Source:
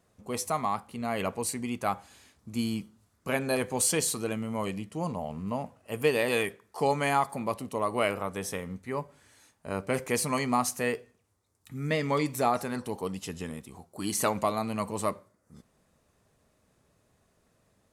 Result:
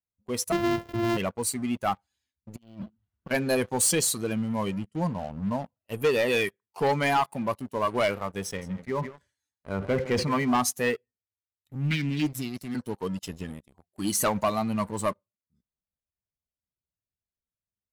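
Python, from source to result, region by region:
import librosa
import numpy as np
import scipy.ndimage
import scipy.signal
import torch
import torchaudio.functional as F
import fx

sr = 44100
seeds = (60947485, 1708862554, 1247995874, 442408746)

y = fx.chain(x, sr, fx.sample_sort(block=128),
    fx.high_shelf(hz=3500.0, db=-10.0),
    fx.env_flatten(amount_pct=50), at=(0.52, 1.17))
y = fx.chain(y, sr, fx.over_compress(threshold_db=-42.0, ratio=-1.0),
    fx.resample_linear(factor=6), at=(2.56, 3.31))
y = fx.chain(y, sr, fx.env_lowpass_down(base_hz=2400.0, full_db=-25.0),
    fx.echo_single(ms=163, db=-12.0),
    fx.sustainer(db_per_s=83.0), at=(8.45, 10.58))
y = fx.chain(y, sr, fx.cheby1_bandstop(low_hz=350.0, high_hz=1900.0, order=4),
    fx.doppler_dist(depth_ms=0.36), at=(11.75, 12.75))
y = fx.bin_expand(y, sr, power=1.5)
y = fx.leveller(y, sr, passes=3)
y = y * 10.0 ** (-3.5 / 20.0)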